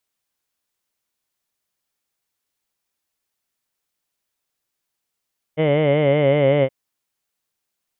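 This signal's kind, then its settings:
vowel from formants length 1.12 s, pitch 151 Hz, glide −1.5 semitones, F1 540 Hz, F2 2,100 Hz, F3 3,000 Hz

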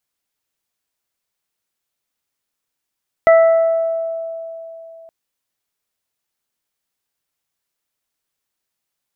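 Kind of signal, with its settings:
harmonic partials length 1.82 s, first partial 658 Hz, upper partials −12/−11.5 dB, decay 3.31 s, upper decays 1.47/0.95 s, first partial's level −5.5 dB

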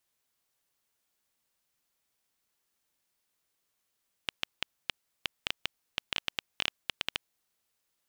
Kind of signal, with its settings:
Geiger counter clicks 6.6 per second −10.5 dBFS 3.27 s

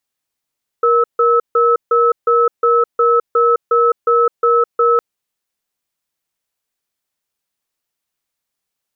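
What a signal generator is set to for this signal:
tone pair in a cadence 471 Hz, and 1,300 Hz, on 0.21 s, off 0.15 s, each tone −12 dBFS 4.16 s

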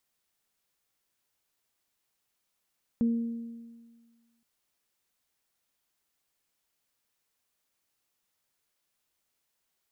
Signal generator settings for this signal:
harmonic partials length 1.42 s, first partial 232 Hz, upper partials −16.5 dB, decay 1.63 s, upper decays 1.28 s, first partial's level −21 dB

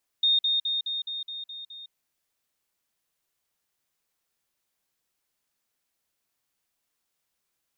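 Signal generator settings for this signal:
level staircase 3,680 Hz −18.5 dBFS, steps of −3 dB, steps 8, 0.16 s 0.05 s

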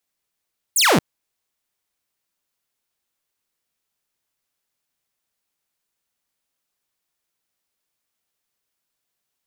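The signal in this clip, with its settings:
single falling chirp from 10,000 Hz, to 130 Hz, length 0.23 s saw, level −10 dB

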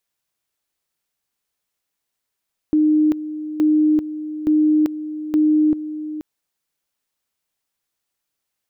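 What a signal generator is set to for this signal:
tone at two levels in turn 306 Hz −12 dBFS, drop 13 dB, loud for 0.39 s, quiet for 0.48 s, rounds 4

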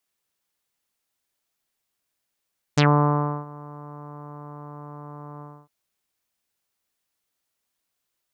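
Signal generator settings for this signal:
subtractive voice saw D3 24 dB per octave, low-pass 1,100 Hz, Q 3.5, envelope 3 octaves, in 0.10 s, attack 11 ms, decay 0.67 s, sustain −24 dB, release 0.27 s, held 2.64 s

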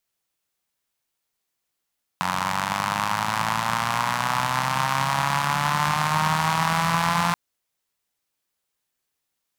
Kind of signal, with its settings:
pulse-train model of a four-cylinder engine, changing speed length 5.13 s, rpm 2,700, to 5,200, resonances 160/970 Hz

